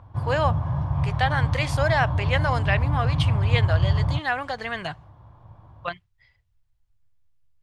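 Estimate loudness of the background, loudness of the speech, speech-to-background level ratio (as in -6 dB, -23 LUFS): -24.5 LUFS, -27.5 LUFS, -3.0 dB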